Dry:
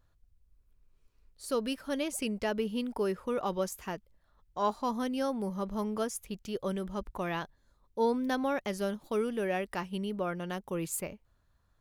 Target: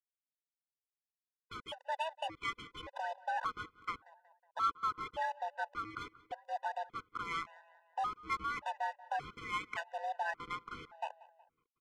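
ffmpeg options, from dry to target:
-filter_complex "[0:a]highpass=f=340:t=q:w=0.5412,highpass=f=340:t=q:w=1.307,lowpass=f=3500:t=q:w=0.5176,lowpass=f=3500:t=q:w=0.7071,lowpass=f=3500:t=q:w=1.932,afreqshift=320,acrossover=split=1400[s0][s1];[s0]acompressor=threshold=0.00891:ratio=10[s2];[s2][s1]amix=inputs=2:normalize=0,acrusher=bits=6:mix=0:aa=0.000001,adynamicsmooth=sensitivity=4:basefreq=1100,asettb=1/sr,asplit=3[s3][s4][s5];[s3]atrim=end=2.744[s6];[s4]atrim=start=2.74:end=3.24,asetpts=PTS-STARTPTS,afade=t=in:d=0.004:c=qsin,afade=t=out:st=0.496:d=0.004:c=qsin,aecho=1:1:2:0.51,atrim=end_sample=22050[s7];[s5]atrim=start=3.236[s8];[s6][s7]acrossfade=d=0.004:c1=hsin:c2=qsin[s9];[s9][s8]acrossfade=d=0.004:c1=qsin:c2=hsin,asplit=2[s10][s11];[s11]adelay=184,lowpass=f=2900:p=1,volume=0.106,asplit=2[s12][s13];[s13]adelay=184,lowpass=f=2900:p=1,volume=0.54,asplit=2[s14][s15];[s15]adelay=184,lowpass=f=2900:p=1,volume=0.54,asplit=2[s16][s17];[s17]adelay=184,lowpass=f=2900:p=1,volume=0.54[s18];[s12][s14][s16][s18]amix=inputs=4:normalize=0[s19];[s10][s19]amix=inputs=2:normalize=0,afftfilt=real='re*gt(sin(2*PI*0.87*pts/sr)*(1-2*mod(floor(b*sr/1024/500),2)),0)':imag='im*gt(sin(2*PI*0.87*pts/sr)*(1-2*mod(floor(b*sr/1024/500),2)),0)':win_size=1024:overlap=0.75,volume=1.88"

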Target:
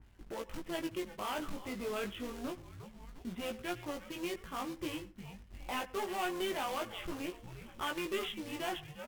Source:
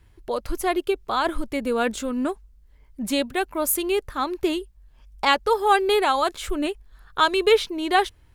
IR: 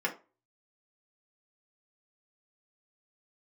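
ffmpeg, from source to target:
-filter_complex "[0:a]agate=range=0.112:threshold=0.00447:ratio=16:detection=peak,asplit=4[s0][s1][s2][s3];[s1]adelay=326,afreqshift=-150,volume=0.112[s4];[s2]adelay=652,afreqshift=-300,volume=0.0484[s5];[s3]adelay=978,afreqshift=-450,volume=0.0207[s6];[s0][s4][s5][s6]amix=inputs=4:normalize=0,acompressor=mode=upward:threshold=0.0398:ratio=2.5,aresample=8000,asoftclip=type=tanh:threshold=0.075,aresample=44100,acrusher=bits=3:mode=log:mix=0:aa=0.000001,asetrate=40572,aresample=44100,tremolo=f=180:d=0.462,flanger=delay=17:depth=3.4:speed=0.27,asplit=2[s7][s8];[1:a]atrim=start_sample=2205,adelay=86[s9];[s8][s9]afir=irnorm=-1:irlink=0,volume=0.0531[s10];[s7][s10]amix=inputs=2:normalize=0,adynamicequalizer=threshold=0.00891:dfrequency=1600:dqfactor=0.7:tfrequency=1600:tqfactor=0.7:attack=5:release=100:ratio=0.375:range=2:mode=boostabove:tftype=highshelf,volume=0.473"

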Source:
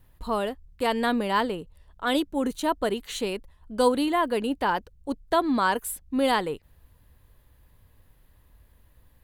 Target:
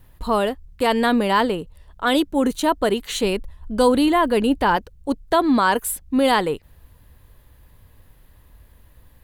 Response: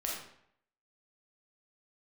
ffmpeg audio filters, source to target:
-filter_complex "[0:a]asettb=1/sr,asplit=3[s0][s1][s2];[s0]atrim=end=3.234[s3];[s1]atrim=start=3.23:end=4.77,asetpts=PTS-STARTPTS,afade=t=in:d=0.004:c=qsin,afade=t=out:st=1.536:d=0.004:c=qsin,lowshelf=f=140:g=8.5[s4];[s2]atrim=start=4.766[s5];[s3][s4]acrossfade=d=0.004:c1=hsin:c2=qsin[s6];[s6][s5]acrossfade=d=0.004:c1=qsin:c2=hsin,asplit=2[s7][s8];[s8]alimiter=limit=0.133:level=0:latency=1:release=15,volume=1.33[s9];[s7][s9]amix=inputs=2:normalize=0"

